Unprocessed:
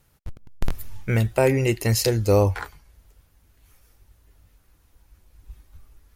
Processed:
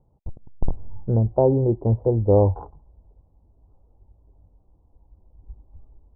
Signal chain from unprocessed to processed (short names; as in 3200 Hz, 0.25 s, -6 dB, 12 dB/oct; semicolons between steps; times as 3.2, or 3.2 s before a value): steep low-pass 930 Hz 48 dB/oct; gain +1.5 dB